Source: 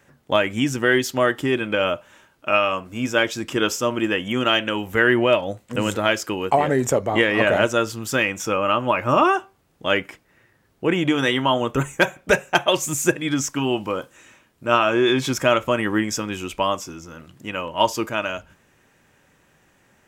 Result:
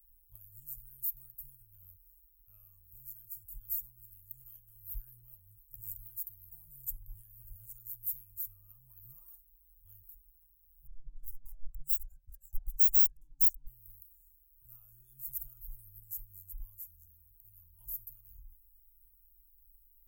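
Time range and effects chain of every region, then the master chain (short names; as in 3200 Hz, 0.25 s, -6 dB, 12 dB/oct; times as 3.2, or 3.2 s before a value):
10.87–13.67 spectral contrast raised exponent 2.3 + compressor 16:1, threshold -32 dBFS + overdrive pedal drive 33 dB, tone 6900 Hz, clips at -12.5 dBFS
whole clip: inverse Chebyshev band-stop 210–4400 Hz, stop band 80 dB; low shelf 350 Hz -4 dB; gain +17.5 dB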